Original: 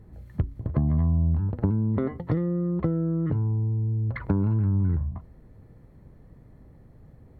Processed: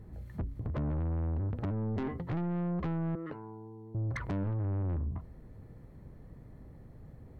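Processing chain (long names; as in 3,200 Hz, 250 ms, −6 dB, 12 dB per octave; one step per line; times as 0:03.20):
0:03.15–0:03.95: high-pass filter 510 Hz 12 dB per octave
soft clipping −30.5 dBFS, distortion −7 dB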